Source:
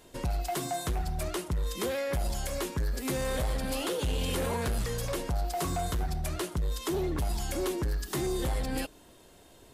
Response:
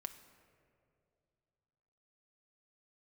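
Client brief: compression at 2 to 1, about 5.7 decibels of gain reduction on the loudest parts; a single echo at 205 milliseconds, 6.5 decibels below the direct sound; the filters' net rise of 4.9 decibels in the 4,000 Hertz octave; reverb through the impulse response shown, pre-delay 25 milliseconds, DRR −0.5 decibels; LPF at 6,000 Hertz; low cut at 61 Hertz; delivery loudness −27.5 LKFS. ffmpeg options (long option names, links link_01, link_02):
-filter_complex "[0:a]highpass=61,lowpass=6000,equalizer=frequency=4000:width_type=o:gain=7,acompressor=threshold=-38dB:ratio=2,aecho=1:1:205:0.473,asplit=2[link_01][link_02];[1:a]atrim=start_sample=2205,adelay=25[link_03];[link_02][link_03]afir=irnorm=-1:irlink=0,volume=3.5dB[link_04];[link_01][link_04]amix=inputs=2:normalize=0,volume=6.5dB"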